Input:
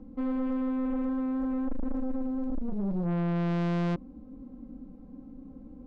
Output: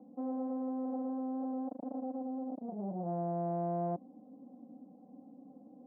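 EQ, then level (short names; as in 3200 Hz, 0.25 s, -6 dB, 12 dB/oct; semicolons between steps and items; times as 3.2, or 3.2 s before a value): HPF 170 Hz 24 dB/oct; synth low-pass 730 Hz, resonance Q 6.1; air absorption 370 m; -8.0 dB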